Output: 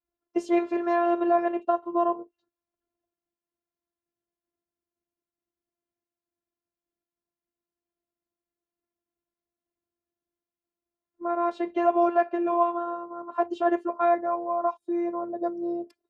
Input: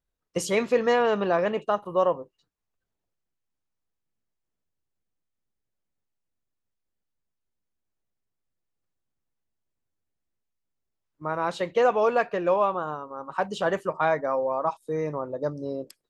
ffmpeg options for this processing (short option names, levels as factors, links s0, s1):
-af "adynamicequalizer=threshold=0.02:dfrequency=440:dqfactor=1.3:tfrequency=440:tqfactor=1.3:attack=5:release=100:ratio=0.375:range=2:mode=cutabove:tftype=bell,afftfilt=real='hypot(re,im)*cos(PI*b)':imag='0':win_size=512:overlap=0.75,bandpass=f=400:t=q:w=0.68:csg=0,volume=2.51"